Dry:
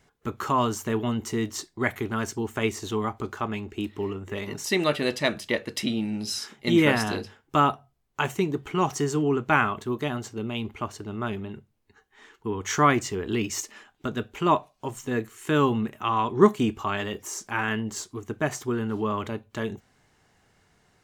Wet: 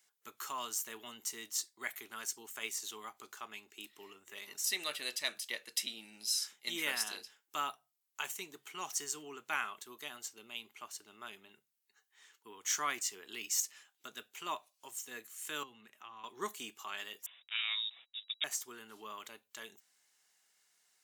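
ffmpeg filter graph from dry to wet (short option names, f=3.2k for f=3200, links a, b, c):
-filter_complex "[0:a]asettb=1/sr,asplit=3[a][b][c];[a]atrim=end=15.634[d];[b]atrim=start=15.63:end=16.24,asetpts=PTS-STARTPTS,afade=t=in:d=0.004:c=qsin,afade=t=out:st=0.606:d=0.004:c=qsin,aemphasis=mode=reproduction:type=50kf,acrossover=split=240|1300[e][f][g];[e]acompressor=threshold=-31dB:ratio=4[h];[f]acompressor=threshold=-37dB:ratio=4[i];[g]acompressor=threshold=-45dB:ratio=4[j];[h][i][j]amix=inputs=3:normalize=0[k];[c]atrim=start=16.236[l];[d][k]acrossfade=d=0.004:c1=hsin:c2=qsin[m];[m][l]acrossfade=d=0.004:c1=qsin:c2=hsin,asettb=1/sr,asplit=3[n][o][p];[n]atrim=end=17.264[q];[o]atrim=start=17.26:end=18.44,asetpts=PTS-STARTPTS,afade=t=in:d=0.004:c=qsin,afade=t=out:st=1.176:d=0.004:c=qsin,aemphasis=mode=production:type=cd,aeval=exprs='sgn(val(0))*max(abs(val(0))-0.01,0)':c=same,lowpass=f=3.3k:t=q:w=0.5098,lowpass=f=3.3k:t=q:w=0.6013,lowpass=f=3.3k:t=q:w=0.9,lowpass=f=3.3k:t=q:w=2.563,afreqshift=-3900[r];[p]atrim=start=18.436[s];[q][r]acrossfade=d=0.004:c1=hsin:c2=qsin[t];[t][s]acrossfade=d=0.004:c1=qsin:c2=hsin,highpass=140,aderivative"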